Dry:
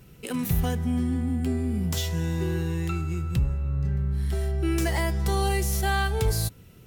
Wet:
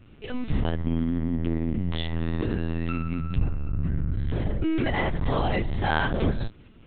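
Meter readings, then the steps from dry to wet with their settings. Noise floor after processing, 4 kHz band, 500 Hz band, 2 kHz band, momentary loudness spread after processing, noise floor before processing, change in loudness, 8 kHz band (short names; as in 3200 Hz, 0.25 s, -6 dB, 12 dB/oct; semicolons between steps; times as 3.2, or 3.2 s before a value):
-50 dBFS, -2.5 dB, 0.0 dB, +1.0 dB, 4 LU, -51 dBFS, -1.0 dB, under -40 dB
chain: LPC vocoder at 8 kHz pitch kept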